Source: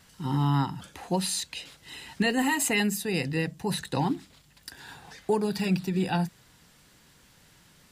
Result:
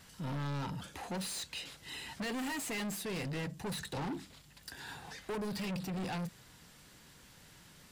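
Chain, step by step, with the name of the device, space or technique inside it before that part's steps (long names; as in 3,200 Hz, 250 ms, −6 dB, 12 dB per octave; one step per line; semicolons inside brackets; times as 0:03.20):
saturation between pre-emphasis and de-emphasis (high-shelf EQ 8,100 Hz +8 dB; soft clipping −35.5 dBFS, distortion −4 dB; high-shelf EQ 8,100 Hz −8 dB)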